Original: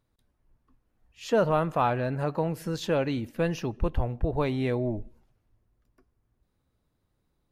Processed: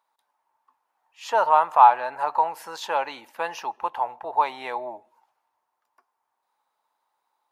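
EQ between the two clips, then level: resonant high-pass 890 Hz, resonance Q 6.5; +1.5 dB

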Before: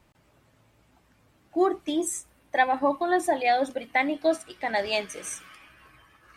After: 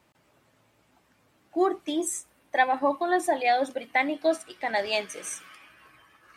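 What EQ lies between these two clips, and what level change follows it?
high-pass 210 Hz 6 dB/octave; 0.0 dB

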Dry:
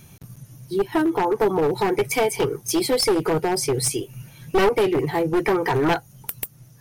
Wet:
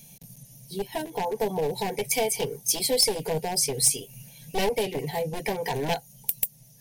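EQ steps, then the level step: treble shelf 3.1 kHz +7.5 dB; static phaser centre 340 Hz, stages 6; -3.5 dB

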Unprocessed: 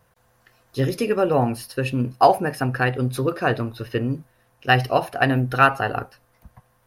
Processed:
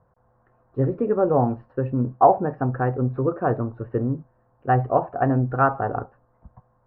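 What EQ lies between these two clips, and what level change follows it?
low-pass 1.2 kHz 24 dB/octave; 0.0 dB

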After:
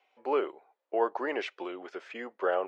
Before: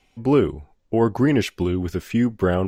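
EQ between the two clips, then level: high-pass 510 Hz 24 dB/octave; low-pass 1.7 kHz 6 dB/octave; distance through air 100 m; -1.5 dB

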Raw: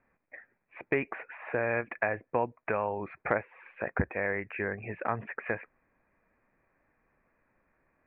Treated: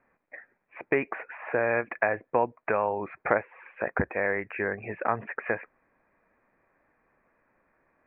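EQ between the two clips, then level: distance through air 390 m; bass shelf 210 Hz -10.5 dB; +7.0 dB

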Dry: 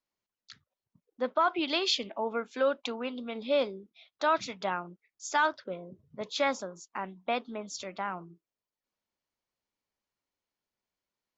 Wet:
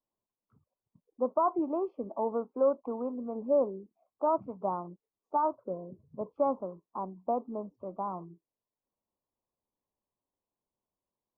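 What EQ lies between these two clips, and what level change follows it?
elliptic low-pass 1.1 kHz, stop band 40 dB; distance through air 320 m; +2.5 dB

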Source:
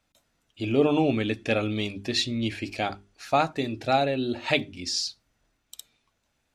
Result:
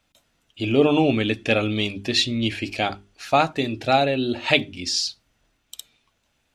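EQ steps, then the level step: peaking EQ 3 kHz +4.5 dB 0.58 oct; +4.0 dB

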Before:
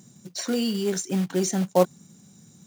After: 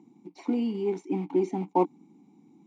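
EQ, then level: vowel filter u; peaking EQ 540 Hz +14 dB 2.7 oct; +2.0 dB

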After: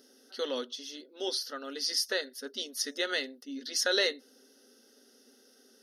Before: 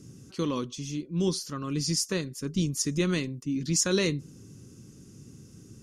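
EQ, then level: dynamic bell 2.2 kHz, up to +4 dB, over -45 dBFS, Q 1.4; brick-wall FIR high-pass 240 Hz; static phaser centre 1.6 kHz, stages 8; +4.0 dB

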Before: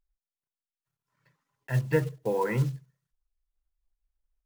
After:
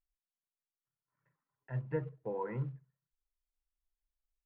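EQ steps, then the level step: dynamic bell 1.7 kHz, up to -4 dB, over -50 dBFS, Q 2.3; four-pole ladder low-pass 2.2 kHz, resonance 20%; -5.5 dB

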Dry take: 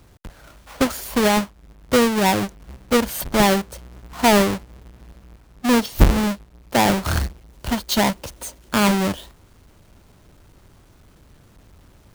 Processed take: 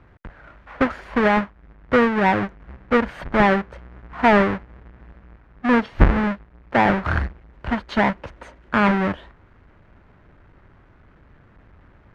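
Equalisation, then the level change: resonant low-pass 1.8 kHz, resonance Q 1.8; -1.0 dB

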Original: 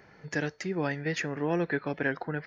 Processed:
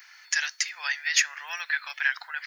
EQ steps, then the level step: Bessel high-pass 1.6 kHz, order 6; tilt EQ +4.5 dB/octave; +6.5 dB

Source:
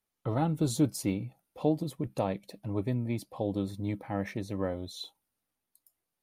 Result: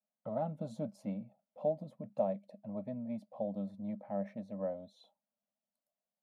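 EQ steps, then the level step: two resonant band-passes 360 Hz, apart 1.5 oct; tilt EQ +2 dB/octave; +5.5 dB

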